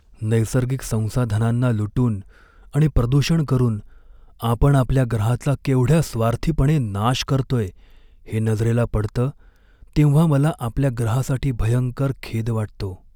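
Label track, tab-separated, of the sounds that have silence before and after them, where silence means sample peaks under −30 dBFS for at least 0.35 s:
2.740000	3.800000	sound
4.420000	7.690000	sound
8.280000	9.300000	sound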